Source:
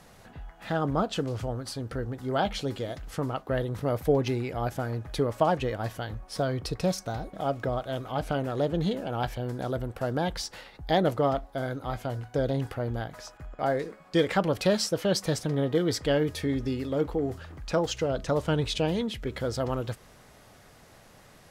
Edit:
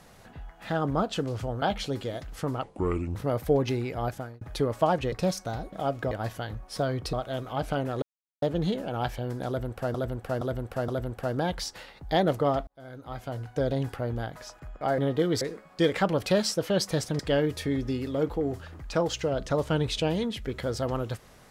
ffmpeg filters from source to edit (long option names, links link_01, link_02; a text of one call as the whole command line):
ffmpeg -i in.wav -filter_complex "[0:a]asplit=16[link_01][link_02][link_03][link_04][link_05][link_06][link_07][link_08][link_09][link_10][link_11][link_12][link_13][link_14][link_15][link_16];[link_01]atrim=end=1.622[link_17];[link_02]atrim=start=2.368:end=3.384[link_18];[link_03]atrim=start=3.38:end=3.74,asetpts=PTS-STARTPTS,asetrate=30429,aresample=44100[link_19];[link_04]atrim=start=3.736:end=5,asetpts=PTS-STARTPTS,afade=type=out:start_time=0.904:duration=0.36[link_20];[link_05]atrim=start=5:end=5.712,asetpts=PTS-STARTPTS,afade=type=in:duration=0.004:curve=hsin[link_21];[link_06]atrim=start=6.728:end=7.722[link_22];[link_07]atrim=start=5.708:end=6.732[link_23];[link_08]atrim=start=7.718:end=8.61,asetpts=PTS-STARTPTS,afade=type=out:start_time=0.888:duration=0.004:curve=hsin,apad=pad_dur=0.4[link_24];[link_09]atrim=start=8.61:end=10.132,asetpts=PTS-STARTPTS,afade=type=in:duration=0.004:curve=hsin[link_25];[link_10]atrim=start=9.658:end=10.132[link_26];[link_11]atrim=start=9.658:end=10.132[link_27];[link_12]atrim=start=9.658:end=11.45,asetpts=PTS-STARTPTS,afade=type=out:start_time=1.788:duration=0.004:curve=hsin[link_28];[link_13]atrim=start=11.45:end=13.762,asetpts=PTS-STARTPTS,afade=type=in:duration=0.84[link_29];[link_14]atrim=start=15.538:end=15.972[link_30];[link_15]atrim=start=13.758:end=15.542[link_31];[link_16]atrim=start=15.968[link_32];[link_17][link_18]acrossfade=duration=0.004:curve1=hsin:curve2=hsin[link_33];[link_33][link_19]acrossfade=duration=0.004:curve1=hsin:curve2=hsin[link_34];[link_20][link_21]concat=n=2:v=0:a=1[link_35];[link_34][link_35]acrossfade=duration=0.004:curve1=hsin:curve2=hsin[link_36];[link_36][link_22]acrossfade=duration=0.004:curve1=hsin:curve2=hsin[link_37];[link_37][link_23]acrossfade=duration=0.004:curve1=hsin:curve2=hsin[link_38];[link_24][link_25]concat=n=2:v=0:a=1[link_39];[link_38][link_39]acrossfade=duration=0.004:curve1=hsin:curve2=hsin[link_40];[link_40][link_26]acrossfade=duration=0.004:curve1=hsin:curve2=hsin[link_41];[link_41][link_27]acrossfade=duration=0.004:curve1=hsin:curve2=hsin[link_42];[link_28][link_29]concat=n=2:v=0:a=1[link_43];[link_42][link_43]acrossfade=duration=0.004:curve1=hsin:curve2=hsin[link_44];[link_44][link_30]acrossfade=duration=0.004:curve1=hsin:curve2=hsin[link_45];[link_45][link_31]acrossfade=duration=0.004:curve1=hsin:curve2=hsin[link_46];[link_46][link_32]acrossfade=duration=0.004:curve1=hsin:curve2=hsin" out.wav